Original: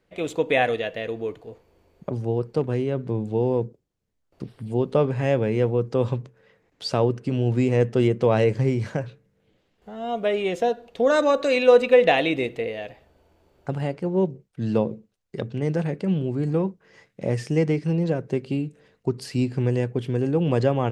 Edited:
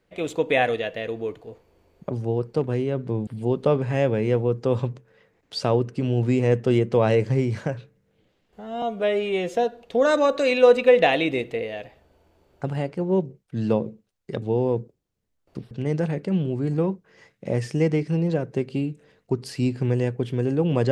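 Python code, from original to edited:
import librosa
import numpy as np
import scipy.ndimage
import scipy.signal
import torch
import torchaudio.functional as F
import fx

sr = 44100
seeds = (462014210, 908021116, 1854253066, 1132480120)

y = fx.edit(x, sr, fx.move(start_s=3.27, length_s=1.29, to_s=15.47),
    fx.stretch_span(start_s=10.11, length_s=0.48, factor=1.5), tone=tone)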